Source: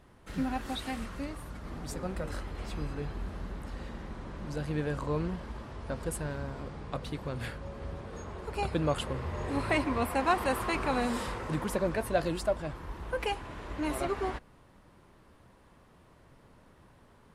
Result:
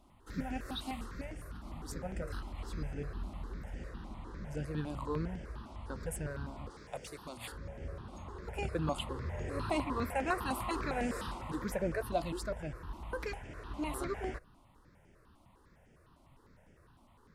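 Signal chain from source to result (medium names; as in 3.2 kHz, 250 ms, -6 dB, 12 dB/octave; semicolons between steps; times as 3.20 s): 6.70–7.52 s: tone controls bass -12 dB, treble +10 dB; stepped phaser 9.9 Hz 460–4000 Hz; trim -2 dB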